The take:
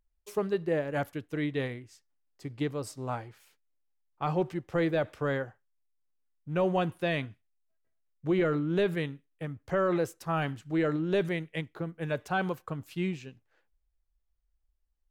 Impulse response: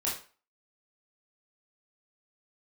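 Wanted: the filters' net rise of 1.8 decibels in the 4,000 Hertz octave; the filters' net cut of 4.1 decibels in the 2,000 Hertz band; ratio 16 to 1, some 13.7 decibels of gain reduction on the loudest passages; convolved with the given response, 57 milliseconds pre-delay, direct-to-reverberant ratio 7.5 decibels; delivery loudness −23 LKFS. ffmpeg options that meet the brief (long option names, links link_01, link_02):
-filter_complex "[0:a]equalizer=frequency=2000:width_type=o:gain=-6.5,equalizer=frequency=4000:width_type=o:gain=5,acompressor=threshold=-37dB:ratio=16,asplit=2[link_01][link_02];[1:a]atrim=start_sample=2205,adelay=57[link_03];[link_02][link_03]afir=irnorm=-1:irlink=0,volume=-13.5dB[link_04];[link_01][link_04]amix=inputs=2:normalize=0,volume=19.5dB"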